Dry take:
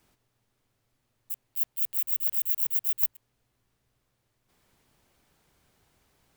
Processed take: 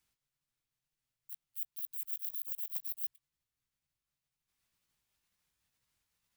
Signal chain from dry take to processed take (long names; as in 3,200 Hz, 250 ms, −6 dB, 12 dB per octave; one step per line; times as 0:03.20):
pitch shifter swept by a sawtooth +5 semitones, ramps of 492 ms
guitar amp tone stack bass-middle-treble 5-5-5
level −3 dB